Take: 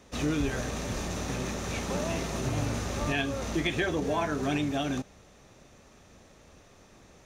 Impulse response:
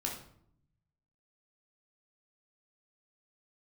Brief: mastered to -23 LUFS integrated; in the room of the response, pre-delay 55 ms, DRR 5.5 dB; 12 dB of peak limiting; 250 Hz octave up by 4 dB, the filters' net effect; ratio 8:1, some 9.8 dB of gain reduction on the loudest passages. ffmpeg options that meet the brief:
-filter_complex "[0:a]equalizer=f=250:t=o:g=5,acompressor=threshold=-32dB:ratio=8,alimiter=level_in=11.5dB:limit=-24dB:level=0:latency=1,volume=-11.5dB,asplit=2[a][b];[1:a]atrim=start_sample=2205,adelay=55[c];[b][c]afir=irnorm=-1:irlink=0,volume=-7.5dB[d];[a][d]amix=inputs=2:normalize=0,volume=20.5dB"

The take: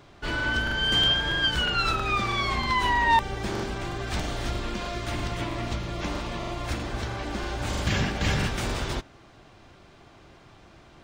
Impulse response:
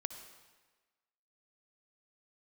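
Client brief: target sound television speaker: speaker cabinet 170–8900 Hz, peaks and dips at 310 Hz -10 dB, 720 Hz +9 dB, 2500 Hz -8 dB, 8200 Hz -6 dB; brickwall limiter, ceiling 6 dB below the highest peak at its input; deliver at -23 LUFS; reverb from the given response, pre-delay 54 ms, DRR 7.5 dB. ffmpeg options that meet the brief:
-filter_complex "[0:a]alimiter=limit=-18.5dB:level=0:latency=1,asplit=2[a][b];[1:a]atrim=start_sample=2205,adelay=54[c];[b][c]afir=irnorm=-1:irlink=0,volume=-6.5dB[d];[a][d]amix=inputs=2:normalize=0,highpass=f=170:w=0.5412,highpass=f=170:w=1.3066,equalizer=f=310:t=q:w=4:g=-10,equalizer=f=720:t=q:w=4:g=9,equalizer=f=2.5k:t=q:w=4:g=-8,equalizer=f=8.2k:t=q:w=4:g=-6,lowpass=f=8.9k:w=0.5412,lowpass=f=8.9k:w=1.3066,volume=5.5dB"

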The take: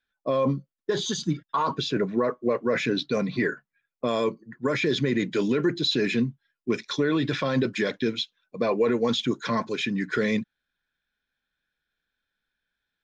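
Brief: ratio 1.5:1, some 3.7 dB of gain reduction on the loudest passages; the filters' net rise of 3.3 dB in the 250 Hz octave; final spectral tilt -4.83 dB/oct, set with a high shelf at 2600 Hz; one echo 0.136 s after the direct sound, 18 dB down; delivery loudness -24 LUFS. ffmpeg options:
-af "equalizer=f=250:t=o:g=4,highshelf=f=2.6k:g=4.5,acompressor=threshold=-27dB:ratio=1.5,aecho=1:1:136:0.126,volume=3dB"

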